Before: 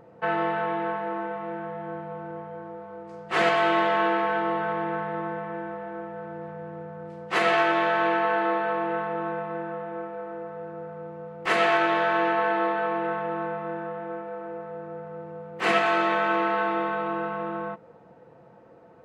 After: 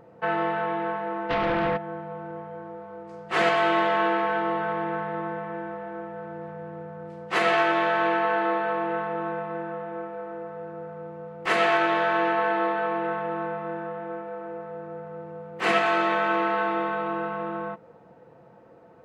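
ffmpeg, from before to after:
-filter_complex "[0:a]asplit=3[s0][s1][s2];[s0]afade=t=out:st=1.29:d=0.02[s3];[s1]aeval=exprs='0.0891*sin(PI/2*3.16*val(0)/0.0891)':c=same,afade=t=in:st=1.29:d=0.02,afade=t=out:st=1.76:d=0.02[s4];[s2]afade=t=in:st=1.76:d=0.02[s5];[s3][s4][s5]amix=inputs=3:normalize=0"

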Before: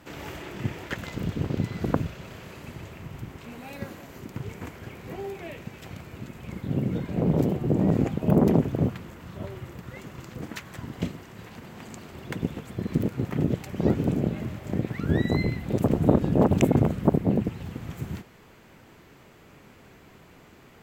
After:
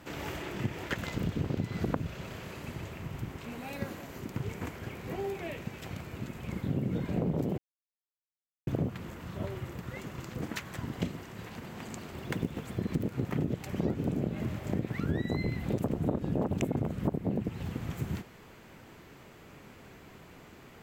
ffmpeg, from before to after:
-filter_complex "[0:a]asettb=1/sr,asplit=3[s0][s1][s2];[s0]atrim=end=12.124[s3];[s1]atrim=start=12.12:end=12.78,asetpts=PTS-STARTPTS,afade=t=in:d=0.004:c=qsin,afade=t=out:st=0.656:d=0.004:c=qsin,acrusher=bits=8:mode=log:mix=0:aa=0.000001[s4];[s2]atrim=start=12.776[s5];[s3][s4]acrossfade=d=0.004:c1=hsin:c2=qsin[s6];[s6][s5]acrossfade=d=0.004:c1=qsin:c2=hsin,asplit=3[s7][s8][s9];[s7]atrim=end=7.58,asetpts=PTS-STARTPTS,afade=t=out:st=7.576:d=0.004:c=hsin[s10];[s8]atrim=start=7.58:end=8.67,asetpts=PTS-STARTPTS,volume=0[s11];[s9]atrim=start=8.67,asetpts=PTS-STARTPTS,afade=t=in:d=0.004:c=hsin[s12];[s10][s11][s12]concat=n=3:v=0:a=1,acompressor=threshold=0.0447:ratio=6"

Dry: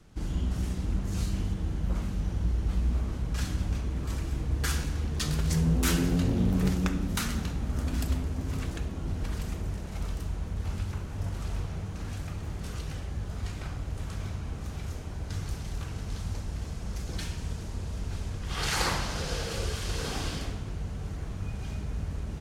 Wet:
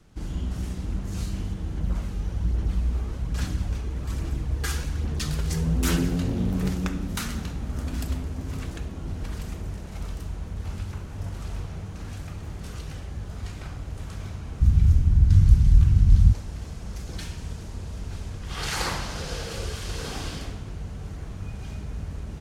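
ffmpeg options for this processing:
-filter_complex "[0:a]asettb=1/sr,asplit=3[s0][s1][s2];[s0]atrim=end=1.774[s3];[s1]atrim=start=1.77:end=6.09,asetpts=PTS-STARTPTS,afade=t=in:d=0.004:c=qsin,afade=t=out:st=4.316:d=0.004:c=qsin,aphaser=in_gain=1:out_gain=1:delay=2.5:decay=0.3:speed=1.2:type=sinusoidal[s4];[s2]atrim=start=6.086[s5];[s3][s4]acrossfade=d=0.004:c1=hsin:c2=qsin[s6];[s6][s5]acrossfade=d=0.004:c1=qsin:c2=hsin,asplit=3[s7][s8][s9];[s7]afade=t=out:st=14.6:d=0.02[s10];[s8]asubboost=boost=12:cutoff=150,afade=t=in:st=14.6:d=0.02,afade=t=out:st=16.31:d=0.02[s11];[s9]afade=t=in:st=16.31:d=0.02[s12];[s10][s11][s12]amix=inputs=3:normalize=0"

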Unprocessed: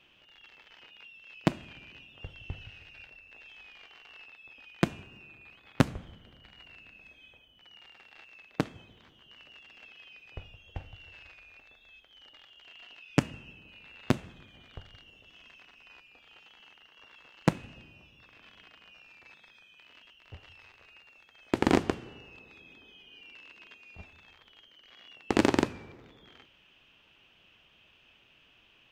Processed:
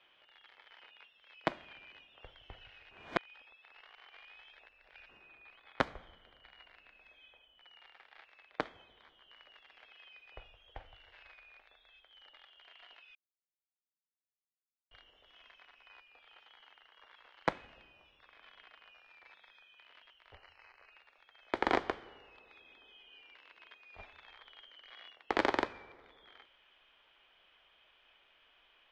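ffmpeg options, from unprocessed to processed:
-filter_complex "[0:a]asettb=1/sr,asplit=3[s0][s1][s2];[s0]atrim=end=20.354[s3];[s1]atrim=start=20.35:end=20.92,asetpts=PTS-STARTPTS,afade=t=in:d=0.004:c=qsin,afade=t=out:st=0.566:d=0.004:c=qsin,asuperstop=centerf=3500:order=12:qfactor=4[s4];[s2]atrim=start=20.916[s5];[s3][s4]acrossfade=d=0.004:c1=hsin:c2=qsin[s6];[s6][s5]acrossfade=d=0.004:c1=qsin:c2=hsin,asplit=7[s7][s8][s9][s10][s11][s12][s13];[s7]atrim=end=2.912[s14];[s8]atrim=start=2.908:end=5.092,asetpts=PTS-STARTPTS,areverse[s15];[s9]atrim=start=5.088:end=13.15,asetpts=PTS-STARTPTS,afade=t=out:st=8.058:d=0.004:c=hsin[s16];[s10]atrim=start=13.15:end=14.91,asetpts=PTS-STARTPTS,volume=0[s17];[s11]atrim=start=14.91:end=23.932,asetpts=PTS-STARTPTS,afade=t=in:d=0.004:c=hsin[s18];[s12]atrim=start=23.928:end=25.102,asetpts=PTS-STARTPTS,volume=1.68[s19];[s13]atrim=start=25.098[s20];[s14][s15]acrossfade=d=0.004:c1=hsin:c2=hsin[s21];[s16][s17][s18]concat=n=3:v=0:a=1[s22];[s21][s22]acrossfade=d=0.004:c1=hsin:c2=hsin[s23];[s23][s19]acrossfade=d=0.004:c1=hsin:c2=hsin[s24];[s24][s20]acrossfade=d=0.004:c1=hsin:c2=hsin,acrossover=split=460 4200:gain=0.141 1 0.0631[s25][s26][s27];[s25][s26][s27]amix=inputs=3:normalize=0,bandreject=f=2700:w=5.5,asubboost=boost=4.5:cutoff=51"

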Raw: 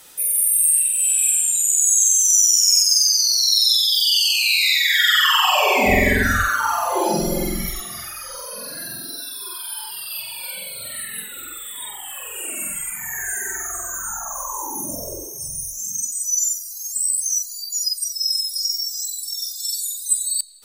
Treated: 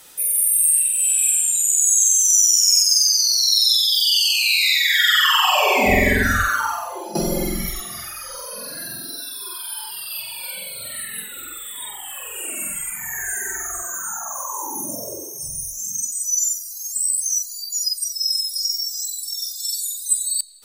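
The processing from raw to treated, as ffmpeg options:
-filter_complex "[0:a]asettb=1/sr,asplit=3[s0][s1][s2];[s0]atrim=end=13.824[s3];[s1]atrim=start=13.82:end=15.43,asetpts=PTS-STARTPTS,afade=t=in:d=0.004:c=qsin,afade=t=out:st=1.606:d=0.004:c=qsin,highpass=140[s4];[s2]atrim=start=15.426[s5];[s3][s4]acrossfade=d=0.004:c1=hsin:c2=qsin[s6];[s6][s5]acrossfade=d=0.004:c1=qsin:c2=hsin,asplit=2[s7][s8];[s7]atrim=end=7.15,asetpts=PTS-STARTPTS,afade=t=out:st=6.58:d=0.57:c=qua:silence=0.211349[s9];[s8]atrim=start=7.15,asetpts=PTS-STARTPTS,afade=t=in:d=0.004:c=hsin:silence=0.211349[s10];[s9][s10]concat=n=2:v=0:a=1"

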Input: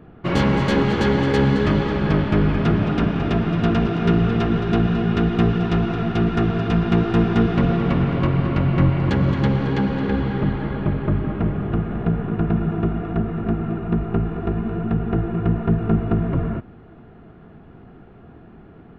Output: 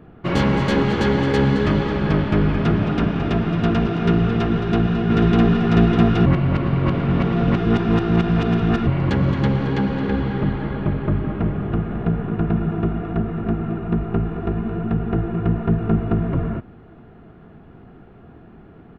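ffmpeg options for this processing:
-filter_complex "[0:a]asplit=2[s0][s1];[s1]afade=t=in:st=4.49:d=0.01,afade=t=out:st=5.65:d=0.01,aecho=0:1:600|1200|1800|2400|3000|3600|4200:1|0.5|0.25|0.125|0.0625|0.03125|0.015625[s2];[s0][s2]amix=inputs=2:normalize=0,asplit=3[s3][s4][s5];[s3]atrim=end=6.262[s6];[s4]atrim=start=6.258:end=8.872,asetpts=PTS-STARTPTS,areverse[s7];[s5]atrim=start=8.868[s8];[s6][s7]acrossfade=d=0.004:c1=hsin:c2=hsin[s9];[s9][s8]acrossfade=d=0.004:c1=hsin:c2=hsin"

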